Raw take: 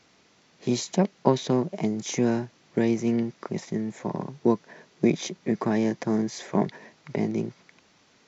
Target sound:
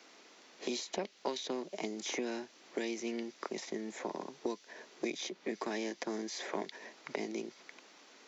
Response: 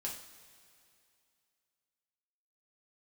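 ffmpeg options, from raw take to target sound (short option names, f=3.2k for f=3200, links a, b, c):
-filter_complex "[0:a]highpass=f=270:w=0.5412,highpass=f=270:w=1.3066,acrossover=split=2500|5200[a][b][c];[a]acompressor=threshold=-40dB:ratio=4[d];[b]acompressor=threshold=-45dB:ratio=4[e];[c]acompressor=threshold=-57dB:ratio=4[f];[d][e][f]amix=inputs=3:normalize=0,volume=2.5dB"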